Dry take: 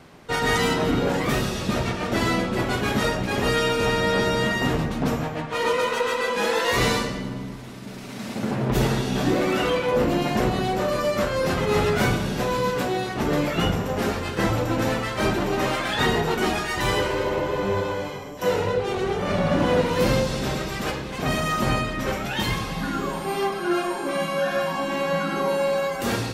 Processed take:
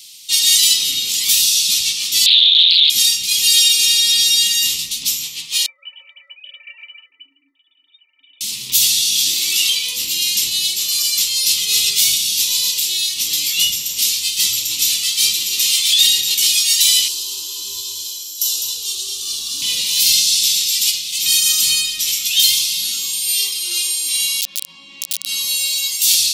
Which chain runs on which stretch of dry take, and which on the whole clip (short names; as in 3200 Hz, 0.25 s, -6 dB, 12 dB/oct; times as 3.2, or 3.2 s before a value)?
2.26–2.9 inverted band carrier 3800 Hz + Doppler distortion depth 0.27 ms
5.66–8.41 sine-wave speech + metallic resonator 270 Hz, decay 0.24 s, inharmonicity 0.03
17.08–19.62 fixed phaser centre 580 Hz, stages 6 + feedback echo 0.205 s, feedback 31%, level -7 dB
24.41–25.26 LPF 1200 Hz + wrapped overs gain 17 dB
whole clip: inverse Chebyshev high-pass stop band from 1700 Hz, stop band 40 dB; high shelf 5600 Hz +8 dB; maximiser +20 dB; gain -1 dB